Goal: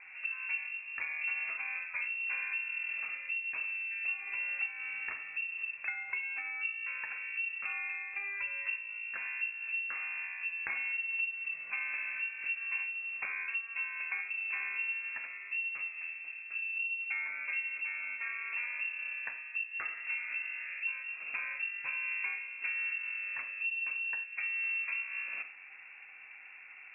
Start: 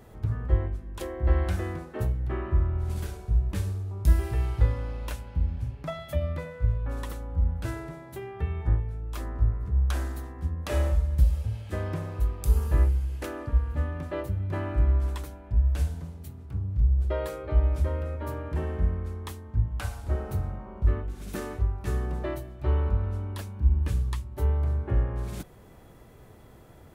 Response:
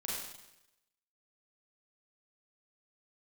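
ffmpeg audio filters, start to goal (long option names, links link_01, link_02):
-filter_complex "[0:a]equalizer=frequency=780:width_type=o:width=3:gain=10,acompressor=threshold=-29dB:ratio=6,aeval=exprs='0.2*(cos(1*acos(clip(val(0)/0.2,-1,1)))-cos(1*PI/2))+0.0282*(cos(3*acos(clip(val(0)/0.2,-1,1)))-cos(3*PI/2))':channel_layout=same,afreqshift=21,asplit=2[link_01][link_02];[1:a]atrim=start_sample=2205,afade=type=out:start_time=0.15:duration=0.01,atrim=end_sample=7056,lowpass=2400[link_03];[link_02][link_03]afir=irnorm=-1:irlink=0,volume=-7dB[link_04];[link_01][link_04]amix=inputs=2:normalize=0,lowpass=frequency=2400:width_type=q:width=0.5098,lowpass=frequency=2400:width_type=q:width=0.6013,lowpass=frequency=2400:width_type=q:width=0.9,lowpass=frequency=2400:width_type=q:width=2.563,afreqshift=-2800,volume=-3dB"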